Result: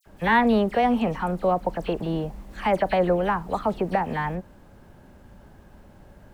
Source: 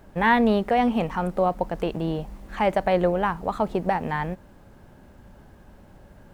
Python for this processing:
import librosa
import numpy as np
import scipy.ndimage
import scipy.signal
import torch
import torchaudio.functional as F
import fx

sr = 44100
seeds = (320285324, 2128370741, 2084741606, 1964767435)

y = fx.dispersion(x, sr, late='lows', ms=61.0, hz=2800.0)